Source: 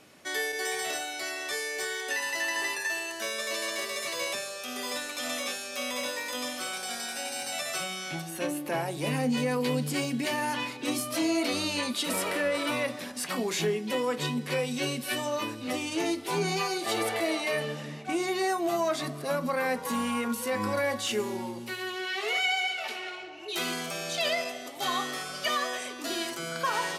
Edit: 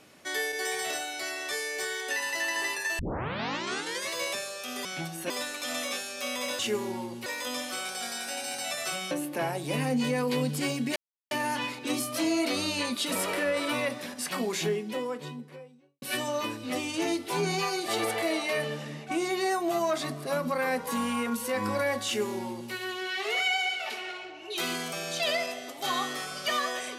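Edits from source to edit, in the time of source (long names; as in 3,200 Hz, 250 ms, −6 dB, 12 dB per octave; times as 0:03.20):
0:02.99: tape start 1.12 s
0:07.99–0:08.44: move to 0:04.85
0:10.29: splice in silence 0.35 s
0:13.37–0:15.00: fade out and dull
0:21.04–0:21.71: duplicate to 0:06.14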